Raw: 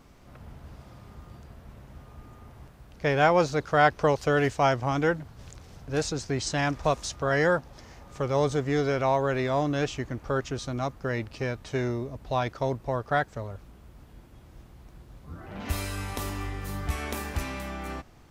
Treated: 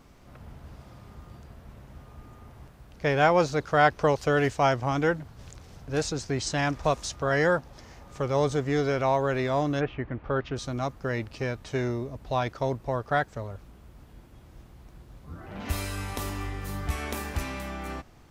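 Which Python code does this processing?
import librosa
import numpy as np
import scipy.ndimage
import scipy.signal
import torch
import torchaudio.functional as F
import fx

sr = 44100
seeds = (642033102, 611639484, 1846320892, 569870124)

y = fx.lowpass(x, sr, hz=fx.line((9.79, 2200.0), (10.55, 4100.0)), slope=24, at=(9.79, 10.55), fade=0.02)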